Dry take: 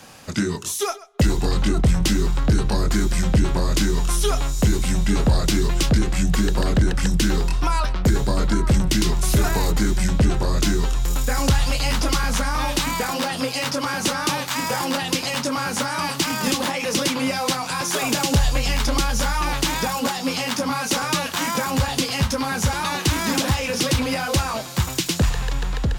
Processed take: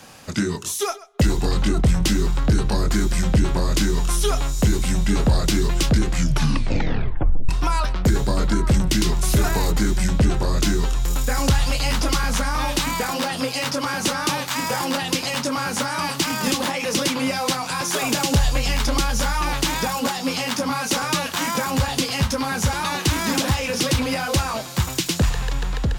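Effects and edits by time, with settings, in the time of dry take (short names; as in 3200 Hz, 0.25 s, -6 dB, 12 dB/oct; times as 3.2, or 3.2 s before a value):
6.1 tape stop 1.39 s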